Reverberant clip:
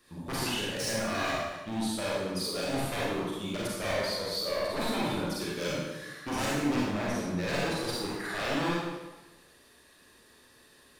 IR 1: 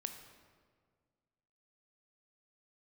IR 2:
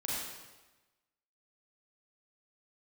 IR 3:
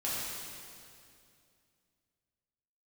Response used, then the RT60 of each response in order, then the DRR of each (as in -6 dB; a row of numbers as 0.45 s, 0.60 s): 2; 1.8 s, 1.1 s, 2.4 s; 6.0 dB, -6.5 dB, -9.0 dB